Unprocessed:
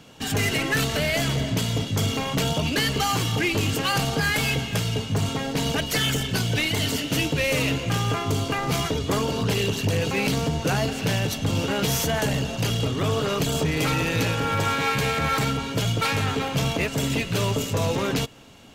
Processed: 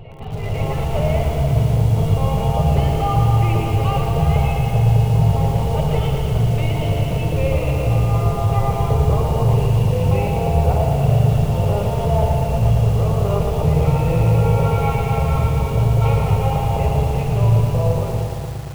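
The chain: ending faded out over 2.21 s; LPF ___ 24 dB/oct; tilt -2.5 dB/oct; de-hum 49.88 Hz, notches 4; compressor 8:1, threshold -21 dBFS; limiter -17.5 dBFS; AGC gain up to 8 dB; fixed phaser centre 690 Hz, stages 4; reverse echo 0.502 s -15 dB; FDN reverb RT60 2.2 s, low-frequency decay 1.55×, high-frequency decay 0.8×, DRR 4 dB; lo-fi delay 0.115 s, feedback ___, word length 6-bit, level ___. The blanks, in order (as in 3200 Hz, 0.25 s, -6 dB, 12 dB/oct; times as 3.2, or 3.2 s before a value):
2500 Hz, 80%, -6 dB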